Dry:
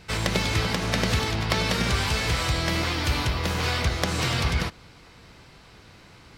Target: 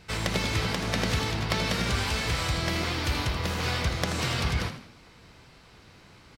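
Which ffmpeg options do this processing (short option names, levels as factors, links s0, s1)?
-filter_complex "[0:a]asplit=5[s0][s1][s2][s3][s4];[s1]adelay=81,afreqshift=44,volume=0.299[s5];[s2]adelay=162,afreqshift=88,volume=0.114[s6];[s3]adelay=243,afreqshift=132,volume=0.0432[s7];[s4]adelay=324,afreqshift=176,volume=0.0164[s8];[s0][s5][s6][s7][s8]amix=inputs=5:normalize=0,volume=0.668"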